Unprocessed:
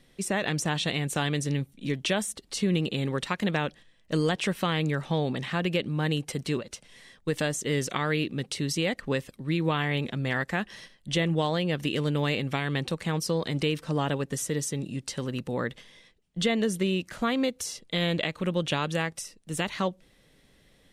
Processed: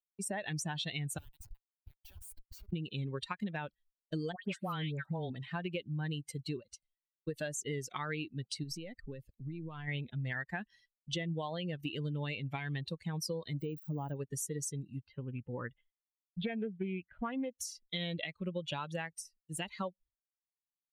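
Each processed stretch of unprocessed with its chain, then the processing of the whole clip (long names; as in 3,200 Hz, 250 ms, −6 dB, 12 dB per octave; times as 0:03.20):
0:01.18–0:02.73: first-order pre-emphasis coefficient 0.97 + comparator with hysteresis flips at −40.5 dBFS
0:04.32–0:05.30: high-pass filter 60 Hz + all-pass dispersion highs, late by 114 ms, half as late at 1,500 Hz
0:08.63–0:09.88: gain on one half-wave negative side −3 dB + low-shelf EQ 470 Hz +5 dB + downward compressor 12 to 1, threshold −28 dBFS
0:13.60–0:14.16: spike at every zero crossing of −28.5 dBFS + de-essing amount 85%
0:15.07–0:17.55: low-pass filter 3,200 Hz 24 dB per octave + highs frequency-modulated by the lows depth 0.19 ms
whole clip: spectral dynamics exaggerated over time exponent 2; downward expander −56 dBFS; downward compressor, threshold −34 dBFS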